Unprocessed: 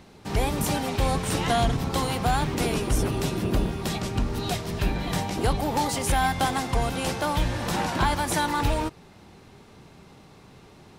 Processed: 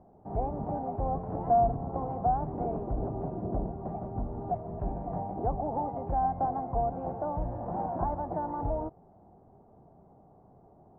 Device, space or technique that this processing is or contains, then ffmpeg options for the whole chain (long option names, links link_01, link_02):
under water: -af "lowpass=frequency=920:width=0.5412,lowpass=frequency=920:width=1.3066,equalizer=frequency=700:width_type=o:width=0.42:gain=11.5,volume=-8.5dB"